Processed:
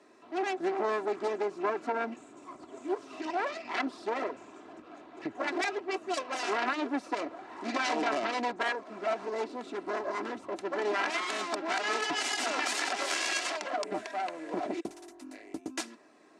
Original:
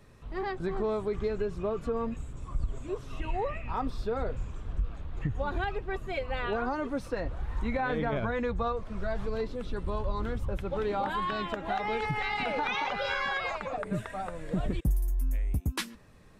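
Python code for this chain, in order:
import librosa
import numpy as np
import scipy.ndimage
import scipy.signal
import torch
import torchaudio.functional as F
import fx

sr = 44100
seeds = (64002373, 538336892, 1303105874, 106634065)

y = fx.self_delay(x, sr, depth_ms=0.62)
y = fx.cabinet(y, sr, low_hz=250.0, low_slope=24, high_hz=8900.0, hz=(320.0, 760.0, 3300.0), db=(4, 6, -4))
y = y + 0.5 * np.pad(y, (int(3.0 * sr / 1000.0), 0))[:len(y)]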